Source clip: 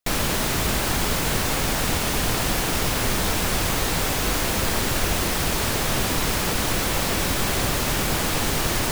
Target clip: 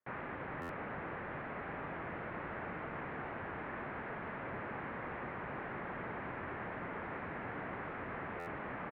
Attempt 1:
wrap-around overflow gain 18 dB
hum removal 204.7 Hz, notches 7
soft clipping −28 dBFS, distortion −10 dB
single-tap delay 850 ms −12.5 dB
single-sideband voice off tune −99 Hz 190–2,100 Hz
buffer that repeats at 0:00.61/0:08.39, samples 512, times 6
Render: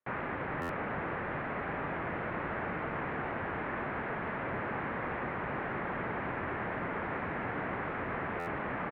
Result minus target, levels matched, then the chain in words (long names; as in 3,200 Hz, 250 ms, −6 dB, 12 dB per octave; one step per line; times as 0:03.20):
soft clipping: distortion −4 dB
wrap-around overflow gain 18 dB
hum removal 204.7 Hz, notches 7
soft clipping −36 dBFS, distortion −6 dB
single-tap delay 850 ms −12.5 dB
single-sideband voice off tune −99 Hz 190–2,100 Hz
buffer that repeats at 0:00.61/0:08.39, samples 512, times 6